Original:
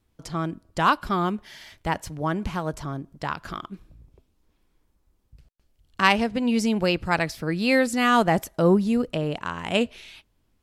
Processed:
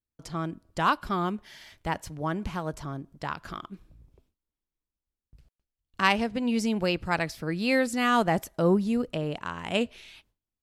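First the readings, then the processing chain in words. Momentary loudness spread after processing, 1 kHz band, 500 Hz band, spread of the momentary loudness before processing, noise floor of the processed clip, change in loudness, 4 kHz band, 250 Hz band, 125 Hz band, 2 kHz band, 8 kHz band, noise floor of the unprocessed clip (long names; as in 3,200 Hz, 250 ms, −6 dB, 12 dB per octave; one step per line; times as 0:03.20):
14 LU, −4.0 dB, −4.0 dB, 14 LU, below −85 dBFS, −4.0 dB, −4.0 dB, −4.0 dB, −4.0 dB, −4.0 dB, −4.0 dB, −69 dBFS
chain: noise gate with hold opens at −50 dBFS
level −4 dB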